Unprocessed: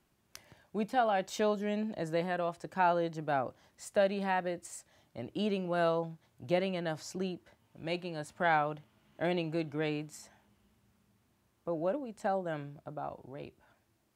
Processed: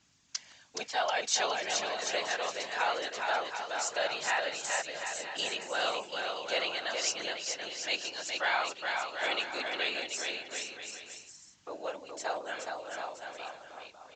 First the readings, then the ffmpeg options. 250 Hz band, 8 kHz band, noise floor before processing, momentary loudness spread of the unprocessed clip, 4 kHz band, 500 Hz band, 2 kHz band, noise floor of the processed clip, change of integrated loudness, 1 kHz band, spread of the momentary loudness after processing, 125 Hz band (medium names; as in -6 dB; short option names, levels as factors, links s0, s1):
-13.5 dB, +15.0 dB, -74 dBFS, 17 LU, +13.0 dB, -3.5 dB, +6.5 dB, -57 dBFS, +1.0 dB, 0.0 dB, 12 LU, -21.5 dB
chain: -filter_complex "[0:a]highpass=330,apsyclip=15.8,aeval=exprs='val(0)+0.0251*(sin(2*PI*50*n/s)+sin(2*PI*2*50*n/s)/2+sin(2*PI*3*50*n/s)/3+sin(2*PI*4*50*n/s)/4+sin(2*PI*5*50*n/s)/5)':c=same,afftfilt=real='hypot(re,im)*cos(2*PI*random(0))':imag='hypot(re,im)*sin(2*PI*random(1))':win_size=512:overlap=0.75,aderivative,asplit=2[s0][s1];[s1]aecho=0:1:420|735|971.2|1148|1281:0.631|0.398|0.251|0.158|0.1[s2];[s0][s2]amix=inputs=2:normalize=0,aresample=16000,aresample=44100,adynamicequalizer=threshold=0.00501:dfrequency=5800:dqfactor=0.7:tfrequency=5800:tqfactor=0.7:attack=5:release=100:ratio=0.375:range=2:mode=cutabove:tftype=highshelf"